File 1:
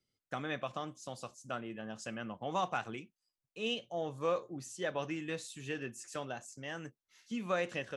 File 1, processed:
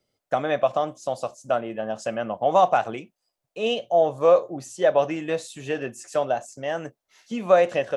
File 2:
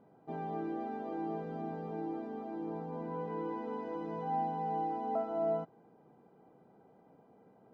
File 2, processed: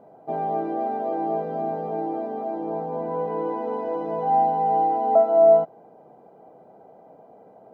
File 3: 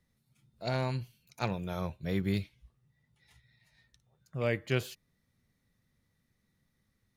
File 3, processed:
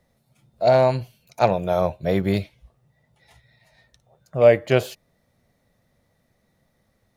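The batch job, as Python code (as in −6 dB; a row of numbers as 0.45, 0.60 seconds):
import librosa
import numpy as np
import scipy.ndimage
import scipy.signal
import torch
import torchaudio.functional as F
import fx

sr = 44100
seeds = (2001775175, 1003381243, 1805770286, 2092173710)

y = fx.peak_eq(x, sr, hz=640.0, db=14.5, octaves=1.0)
y = y * 10.0 ** (-24 / 20.0) / np.sqrt(np.mean(np.square(y)))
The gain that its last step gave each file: +7.0, +4.5, +7.5 decibels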